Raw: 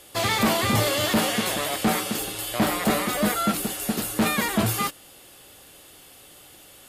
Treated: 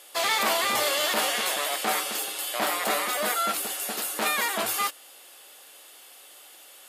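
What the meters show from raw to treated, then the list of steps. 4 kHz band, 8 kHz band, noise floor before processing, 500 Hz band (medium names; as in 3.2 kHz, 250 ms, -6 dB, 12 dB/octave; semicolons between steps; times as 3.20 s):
0.0 dB, 0.0 dB, -49 dBFS, -3.5 dB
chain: high-pass 580 Hz 12 dB/octave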